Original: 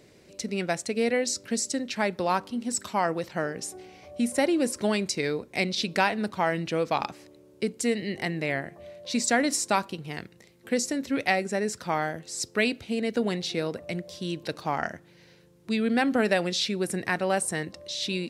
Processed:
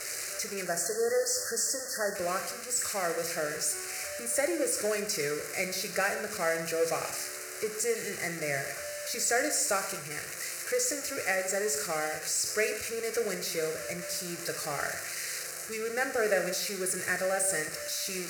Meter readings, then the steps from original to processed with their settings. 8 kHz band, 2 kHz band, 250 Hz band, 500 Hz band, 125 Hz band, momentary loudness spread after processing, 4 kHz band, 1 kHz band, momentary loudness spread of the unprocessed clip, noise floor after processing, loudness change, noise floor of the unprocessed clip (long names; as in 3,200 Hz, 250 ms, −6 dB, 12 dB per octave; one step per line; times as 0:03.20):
+4.0 dB, −1.5 dB, −13.0 dB, −2.0 dB, −10.0 dB, 7 LU, −3.5 dB, −7.0 dB, 10 LU, −40 dBFS, −2.5 dB, −56 dBFS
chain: spike at every zero crossing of −13.5 dBFS
time-frequency box erased 0:00.65–0:02.15, 2,000–4,200 Hz
high-frequency loss of the air 58 metres
phaser with its sweep stopped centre 920 Hz, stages 6
reverb whose tail is shaped and stops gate 290 ms falling, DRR 5.5 dB
level −2.5 dB